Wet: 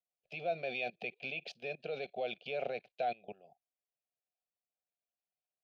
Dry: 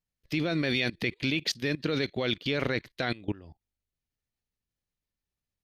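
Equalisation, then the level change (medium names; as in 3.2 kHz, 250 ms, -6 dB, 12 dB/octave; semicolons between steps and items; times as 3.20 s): vowel filter a; treble shelf 3.4 kHz -7 dB; static phaser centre 300 Hz, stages 6; +8.5 dB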